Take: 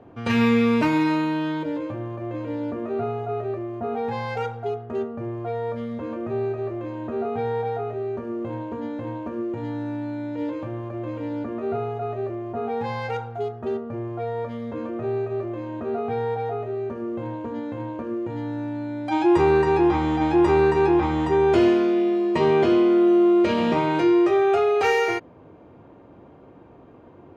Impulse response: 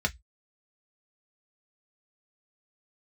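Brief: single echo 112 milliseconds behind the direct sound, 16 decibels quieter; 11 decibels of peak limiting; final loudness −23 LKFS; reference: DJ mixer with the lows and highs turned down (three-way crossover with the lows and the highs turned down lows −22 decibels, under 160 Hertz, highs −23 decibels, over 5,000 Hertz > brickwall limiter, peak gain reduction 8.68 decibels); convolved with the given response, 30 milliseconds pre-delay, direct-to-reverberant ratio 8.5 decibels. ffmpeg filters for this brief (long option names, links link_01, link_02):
-filter_complex "[0:a]alimiter=limit=-18.5dB:level=0:latency=1,aecho=1:1:112:0.158,asplit=2[link_01][link_02];[1:a]atrim=start_sample=2205,adelay=30[link_03];[link_02][link_03]afir=irnorm=-1:irlink=0,volume=-17dB[link_04];[link_01][link_04]amix=inputs=2:normalize=0,acrossover=split=160 5000:gain=0.0794 1 0.0708[link_05][link_06][link_07];[link_05][link_06][link_07]amix=inputs=3:normalize=0,volume=9dB,alimiter=limit=-15.5dB:level=0:latency=1"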